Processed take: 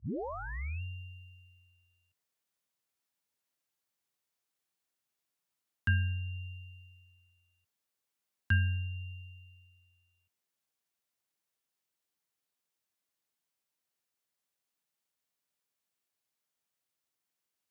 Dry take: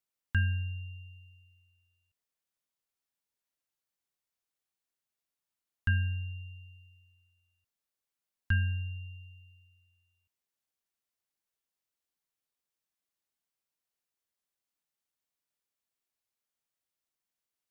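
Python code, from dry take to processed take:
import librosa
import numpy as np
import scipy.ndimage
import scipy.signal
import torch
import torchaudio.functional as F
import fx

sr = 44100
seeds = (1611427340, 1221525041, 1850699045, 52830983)

y = fx.tape_start_head(x, sr, length_s=0.82)
y = scipy.signal.sosfilt(scipy.signal.butter(4, 78.0, 'highpass', fs=sr, output='sos'), y)
y = fx.rider(y, sr, range_db=3, speed_s=0.5)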